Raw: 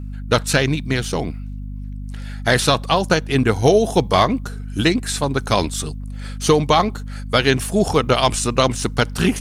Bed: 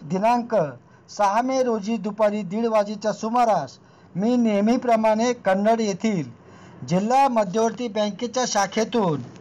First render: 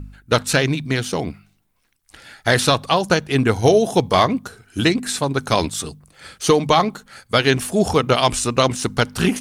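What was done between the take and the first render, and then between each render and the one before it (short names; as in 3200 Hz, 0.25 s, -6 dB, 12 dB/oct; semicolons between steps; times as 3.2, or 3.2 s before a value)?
de-hum 50 Hz, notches 5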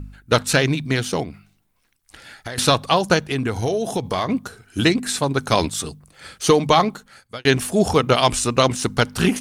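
1.23–2.58 compressor, threshold -28 dBFS; 3.31–4.29 compressor 4:1, threshold -19 dBFS; 6.88–7.45 fade out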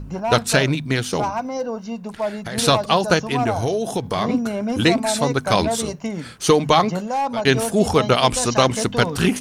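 add bed -4.5 dB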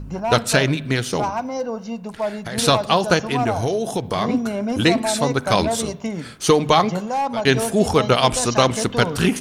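spring tank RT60 1 s, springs 40/60 ms, chirp 30 ms, DRR 19.5 dB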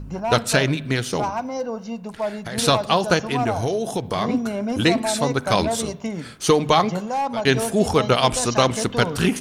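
gain -1.5 dB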